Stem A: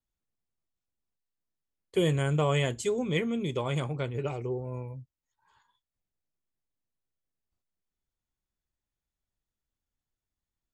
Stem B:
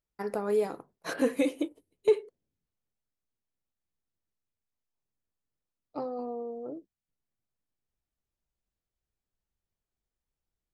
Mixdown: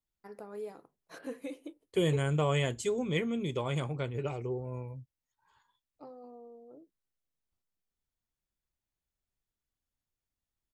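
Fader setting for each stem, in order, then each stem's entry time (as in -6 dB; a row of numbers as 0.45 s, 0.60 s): -2.5 dB, -14.0 dB; 0.00 s, 0.05 s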